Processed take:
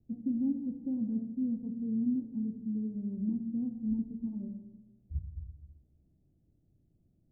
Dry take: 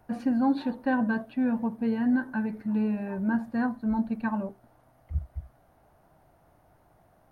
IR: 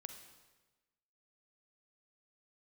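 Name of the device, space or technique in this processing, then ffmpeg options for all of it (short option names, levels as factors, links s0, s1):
next room: -filter_complex "[0:a]lowpass=f=320:w=0.5412,lowpass=f=320:w=1.3066[s0];[1:a]atrim=start_sample=2205[s1];[s0][s1]afir=irnorm=-1:irlink=0"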